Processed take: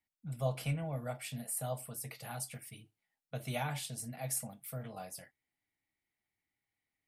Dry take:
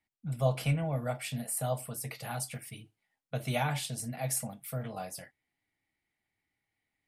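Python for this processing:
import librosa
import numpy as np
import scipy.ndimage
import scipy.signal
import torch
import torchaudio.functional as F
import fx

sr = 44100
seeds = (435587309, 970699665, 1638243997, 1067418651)

y = fx.high_shelf(x, sr, hz=8200.0, db=4.5)
y = F.gain(torch.from_numpy(y), -6.0).numpy()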